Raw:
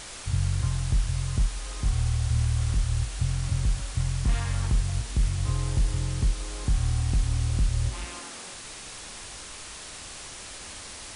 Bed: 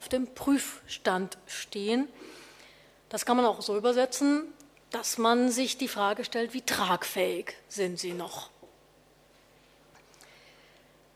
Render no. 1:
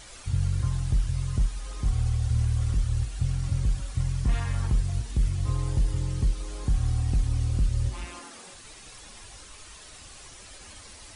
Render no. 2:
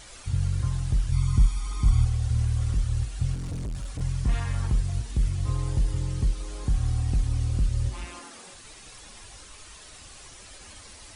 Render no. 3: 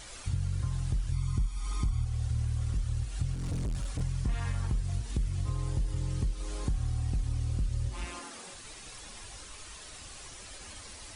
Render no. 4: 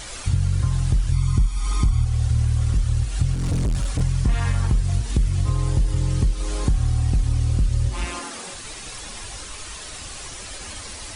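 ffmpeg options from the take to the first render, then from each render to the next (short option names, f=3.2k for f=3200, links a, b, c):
-af "afftdn=nr=9:nf=-41"
-filter_complex "[0:a]asettb=1/sr,asplit=3[a][b][c];[a]atrim=end=1.124[d];[b]atrim=start=1.12:end=2.05,asetpts=PTS-STARTPTS,afade=t=in:d=0.004:c=qsin,afade=t=out:st=0.926:d=0.004:c=qsin,aecho=1:1:0.9:0.9,atrim=end_sample=41013[e];[c]atrim=start=2.046[f];[d][e]acrossfade=d=0.004:c1=hsin:c2=qsin[g];[g][f]acrossfade=d=0.004:c1=qsin:c2=hsin,asettb=1/sr,asplit=3[h][i][j];[h]atrim=end=3.344[k];[i]atrim=start=3.34:end=4.01,asetpts=PTS-STARTPTS,afade=t=in:d=0.004:c=qsin,afade=t=out:st=0.666:d=0.004:c=qsin,volume=29dB,asoftclip=hard,volume=-29dB[l];[j]atrim=start=4.006[m];[k][l]acrossfade=d=0.004:c1=hsin:c2=qsin[n];[n][m]acrossfade=d=0.004:c1=qsin:c2=hsin"
-af "acompressor=threshold=-28dB:ratio=4"
-af "volume=11dB"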